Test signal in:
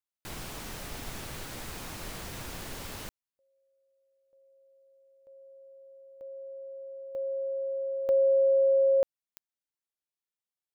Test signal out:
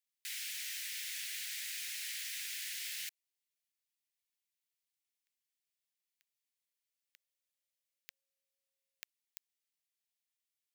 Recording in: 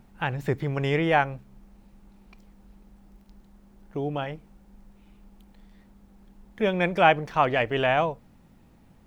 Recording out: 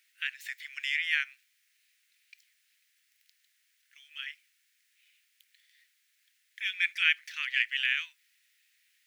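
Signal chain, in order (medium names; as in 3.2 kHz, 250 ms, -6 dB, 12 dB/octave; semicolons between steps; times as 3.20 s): steep high-pass 1.8 kHz 48 dB/octave; trim +3 dB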